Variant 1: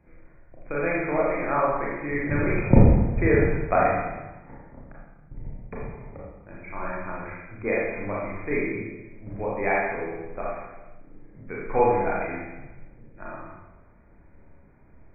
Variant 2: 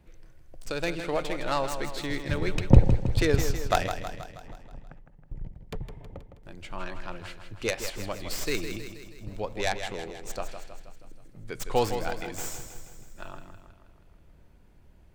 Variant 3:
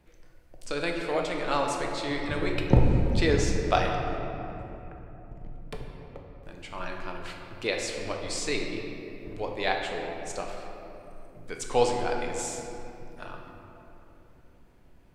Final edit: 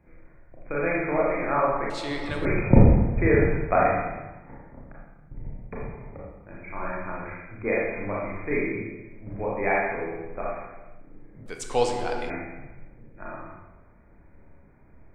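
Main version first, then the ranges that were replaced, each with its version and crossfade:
1
1.90–2.45 s: from 3
11.46–12.30 s: from 3
not used: 2

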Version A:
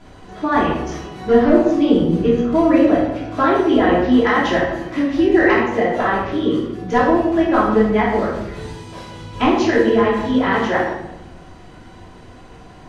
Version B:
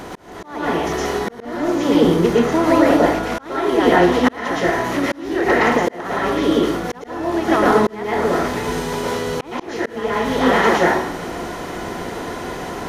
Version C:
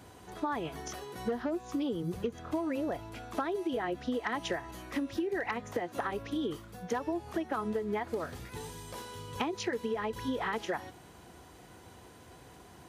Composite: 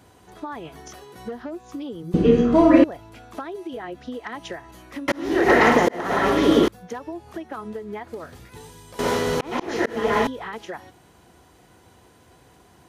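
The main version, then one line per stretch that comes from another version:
C
2.14–2.84 s: from A
5.08–6.68 s: from B
8.99–10.27 s: from B

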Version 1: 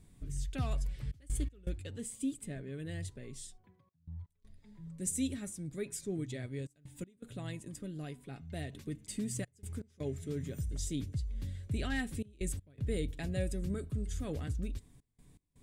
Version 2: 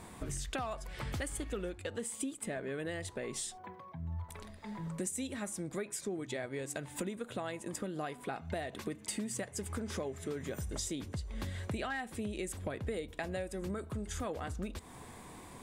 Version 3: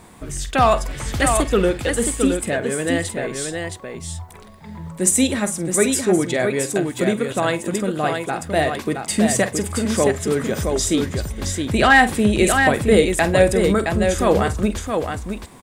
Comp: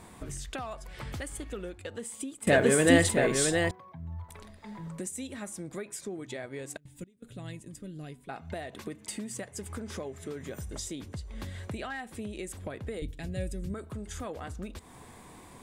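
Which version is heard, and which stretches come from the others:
2
2.47–3.71 s: from 3
6.77–8.29 s: from 1
13.02–13.74 s: from 1

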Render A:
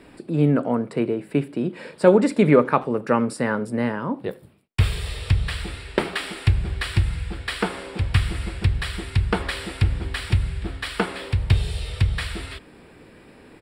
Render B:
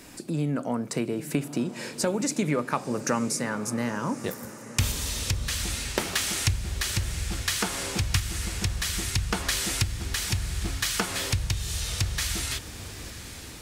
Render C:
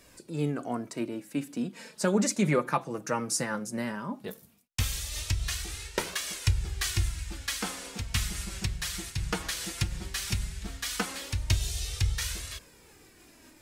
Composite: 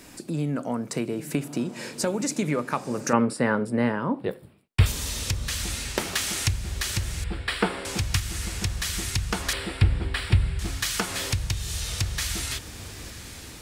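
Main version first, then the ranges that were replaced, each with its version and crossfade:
B
3.13–4.86 s: from A
7.24–7.85 s: from A
9.53–10.59 s: from A
not used: C

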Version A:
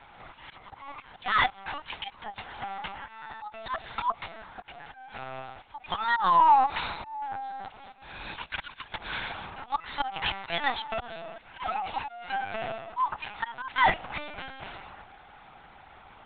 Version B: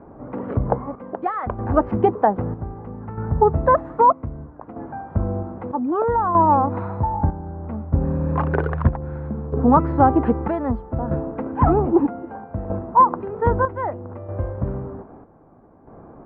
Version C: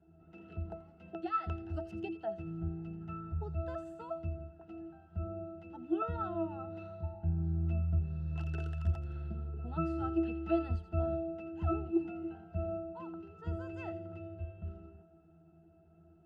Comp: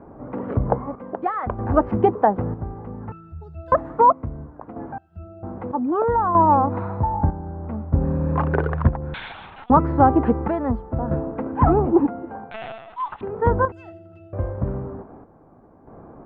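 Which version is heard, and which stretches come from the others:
B
3.12–3.72 s: from C
4.98–5.43 s: from C
9.14–9.70 s: from A
12.51–13.21 s: from A
13.72–14.33 s: from C

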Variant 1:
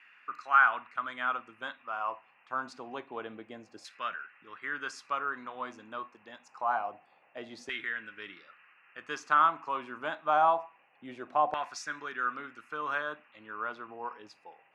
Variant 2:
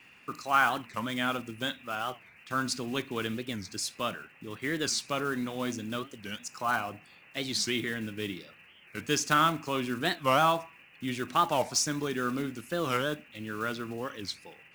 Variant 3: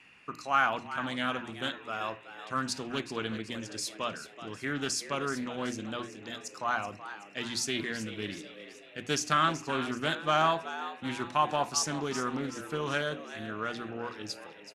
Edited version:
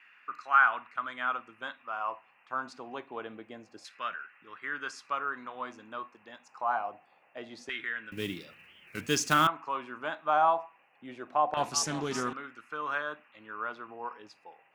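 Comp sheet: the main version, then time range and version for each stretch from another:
1
8.12–9.47 s: from 2
11.57–12.33 s: from 3

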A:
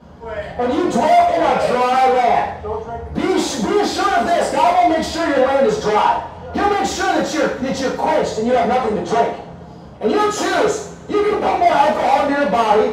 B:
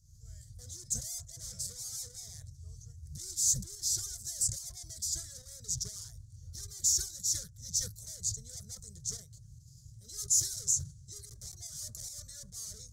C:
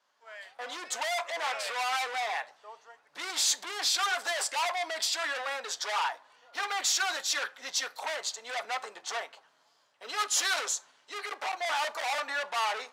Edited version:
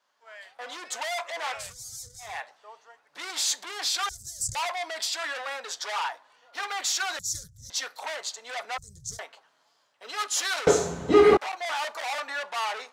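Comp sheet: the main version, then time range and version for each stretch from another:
C
1.63–2.30 s: from B, crossfade 0.24 s
4.09–4.55 s: from B
7.19–7.70 s: from B
8.78–9.19 s: from B
10.67–11.37 s: from A

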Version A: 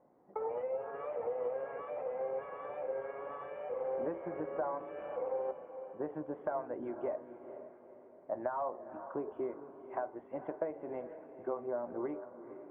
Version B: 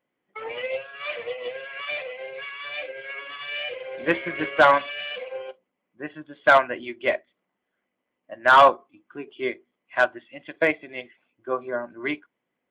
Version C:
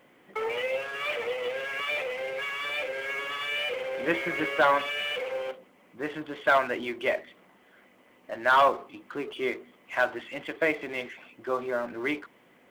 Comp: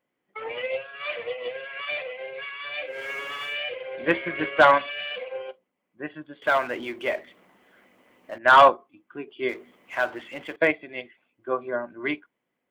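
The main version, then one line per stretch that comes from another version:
B
2.94–3.52 s: from C, crossfade 0.16 s
6.42–8.38 s: from C
9.49–10.56 s: from C
not used: A

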